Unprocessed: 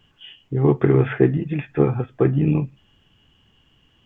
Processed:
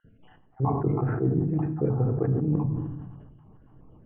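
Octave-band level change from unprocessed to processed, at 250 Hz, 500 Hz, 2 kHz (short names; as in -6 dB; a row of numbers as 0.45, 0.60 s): -6.5 dB, -9.5 dB, under -10 dB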